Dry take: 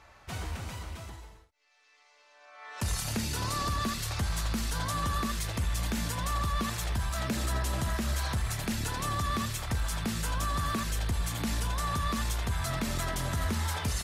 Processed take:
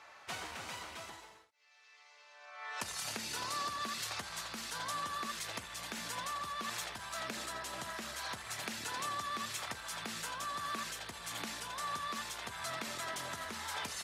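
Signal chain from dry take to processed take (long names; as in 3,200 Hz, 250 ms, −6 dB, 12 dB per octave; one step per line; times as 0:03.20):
downward compressor, threshold −34 dBFS, peak gain reduction 8.5 dB
meter weighting curve A
level +1 dB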